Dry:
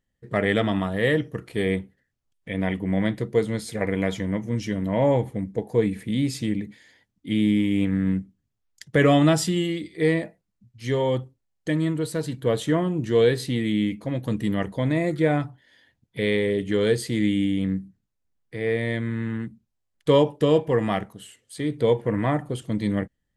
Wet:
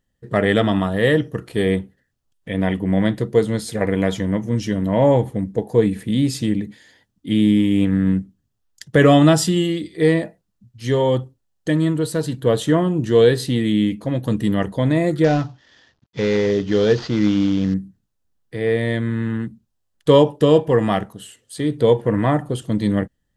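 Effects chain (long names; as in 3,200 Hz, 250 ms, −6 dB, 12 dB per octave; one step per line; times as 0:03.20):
0:15.24–0:17.74: variable-slope delta modulation 32 kbit/s
parametric band 2,200 Hz −7.5 dB 0.27 octaves
level +5.5 dB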